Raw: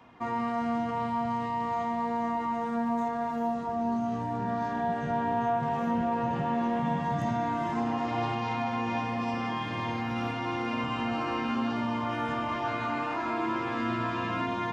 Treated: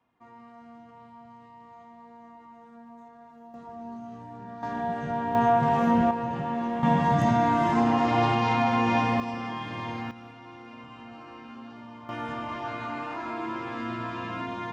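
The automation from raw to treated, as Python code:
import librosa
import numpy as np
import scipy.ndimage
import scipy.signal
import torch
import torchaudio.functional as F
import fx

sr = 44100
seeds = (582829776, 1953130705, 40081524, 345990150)

y = fx.gain(x, sr, db=fx.steps((0.0, -19.0), (3.54, -10.5), (4.63, -0.5), (5.35, 6.5), (6.11, -1.0), (6.83, 7.0), (9.2, -2.0), (10.11, -14.0), (12.09, -3.0)))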